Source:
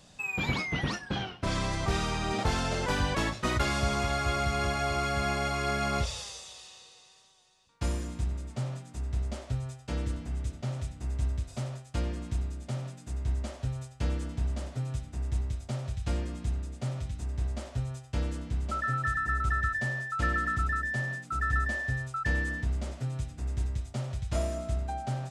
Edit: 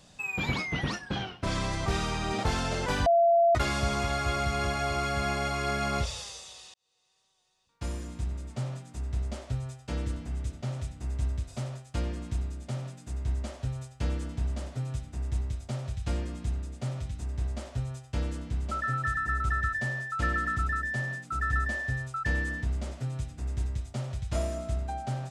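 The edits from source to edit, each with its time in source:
3.06–3.55 bleep 681 Hz -18 dBFS
6.74–8.53 fade in

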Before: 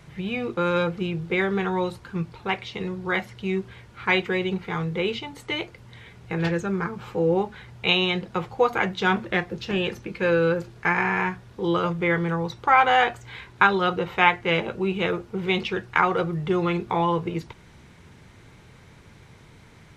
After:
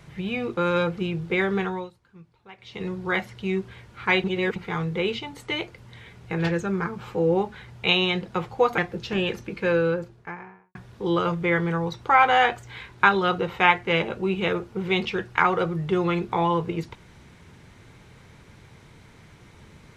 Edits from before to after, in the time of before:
1.6–2.88 dip -20 dB, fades 0.31 s
4.24–4.56 reverse
8.78–9.36 cut
10.11–11.33 studio fade out

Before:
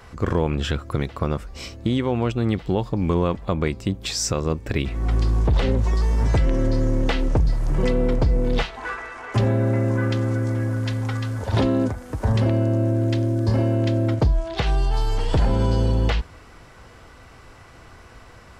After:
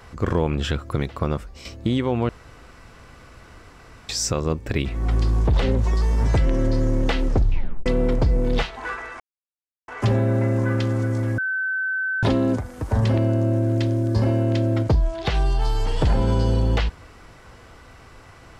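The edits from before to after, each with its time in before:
1.38–1.65 fade out, to -9 dB
2.29–4.09 room tone
7.28 tape stop 0.58 s
9.2 insert silence 0.68 s
10.7–11.55 bleep 1530 Hz -21.5 dBFS

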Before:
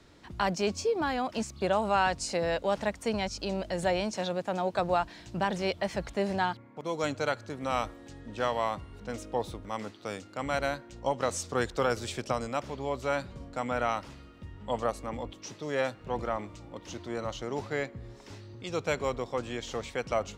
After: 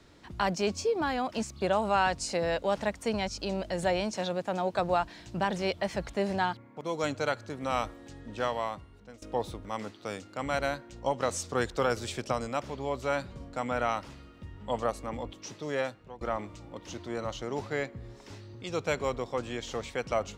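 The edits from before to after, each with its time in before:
8.34–9.22 fade out, to -17.5 dB
15.71–16.21 fade out, to -22.5 dB

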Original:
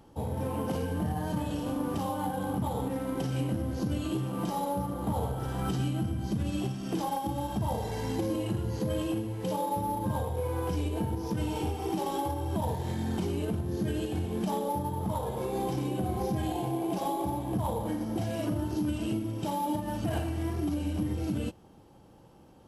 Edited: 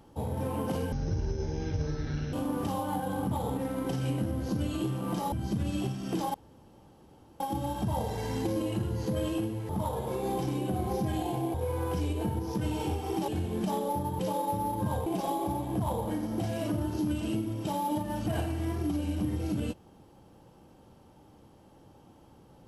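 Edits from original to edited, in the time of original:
0.92–1.64 speed 51%
4.63–6.12 cut
7.14 insert room tone 1.06 s
9.43–10.3 swap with 14.99–16.84
12.04–14.08 cut

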